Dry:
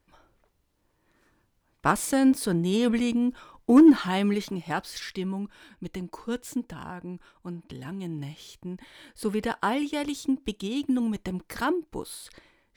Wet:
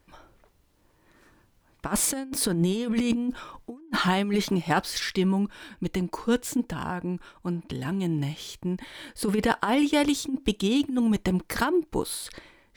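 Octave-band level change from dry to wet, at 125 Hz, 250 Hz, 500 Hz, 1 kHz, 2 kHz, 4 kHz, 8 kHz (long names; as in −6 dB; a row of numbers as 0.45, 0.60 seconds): +5.0, −1.5, +1.0, +1.0, +3.0, +5.5, +7.0 decibels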